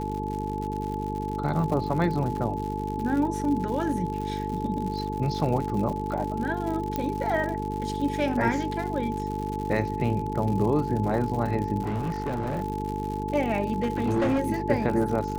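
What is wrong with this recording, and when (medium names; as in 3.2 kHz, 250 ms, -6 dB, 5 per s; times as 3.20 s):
buzz 50 Hz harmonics 9 -32 dBFS
crackle 120 per s -32 dBFS
whine 860 Hz -32 dBFS
6.96 s: pop -14 dBFS
11.81–12.62 s: clipped -24.5 dBFS
13.73–14.40 s: clipped -20 dBFS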